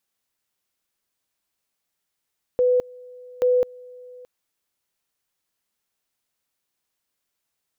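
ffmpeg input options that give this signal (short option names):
-f lavfi -i "aevalsrc='pow(10,(-15-24.5*gte(mod(t,0.83),0.21))/20)*sin(2*PI*498*t)':d=1.66:s=44100"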